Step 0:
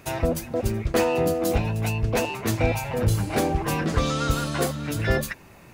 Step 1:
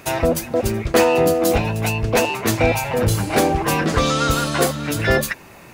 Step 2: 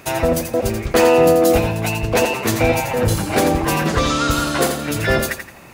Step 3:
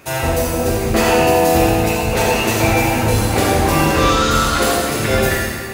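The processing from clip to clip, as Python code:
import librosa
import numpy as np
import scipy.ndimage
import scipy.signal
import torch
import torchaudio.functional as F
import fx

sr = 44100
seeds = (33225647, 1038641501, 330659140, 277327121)

y1 = fx.low_shelf(x, sr, hz=190.0, db=-7.5)
y1 = y1 * librosa.db_to_amplitude(8.0)
y2 = fx.echo_feedback(y1, sr, ms=85, feedback_pct=33, wet_db=-7)
y3 = fx.rev_plate(y2, sr, seeds[0], rt60_s=1.9, hf_ratio=0.95, predelay_ms=0, drr_db=-6.0)
y3 = y3 * librosa.db_to_amplitude(-3.5)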